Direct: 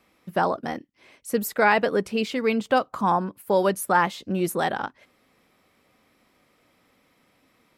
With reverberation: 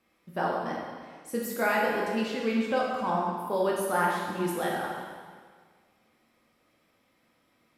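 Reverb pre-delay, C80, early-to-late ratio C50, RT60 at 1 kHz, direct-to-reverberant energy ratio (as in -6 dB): 5 ms, 2.0 dB, 0.5 dB, 1.6 s, -3.5 dB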